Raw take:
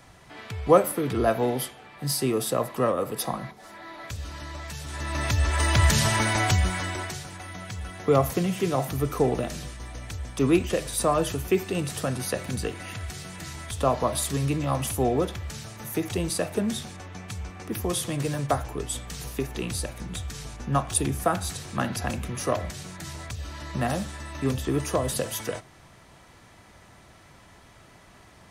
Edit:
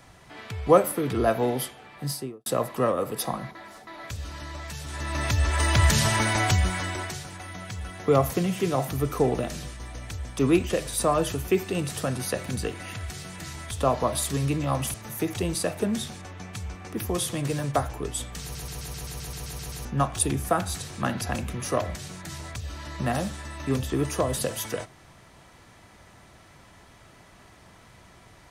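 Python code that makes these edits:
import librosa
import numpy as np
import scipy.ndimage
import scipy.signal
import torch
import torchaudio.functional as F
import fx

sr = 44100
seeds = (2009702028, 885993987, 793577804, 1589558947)

y = fx.studio_fade_out(x, sr, start_s=1.97, length_s=0.49)
y = fx.edit(y, sr, fx.reverse_span(start_s=3.55, length_s=0.32),
    fx.cut(start_s=14.94, length_s=0.75),
    fx.stutter_over(start_s=19.17, slice_s=0.13, count=11), tone=tone)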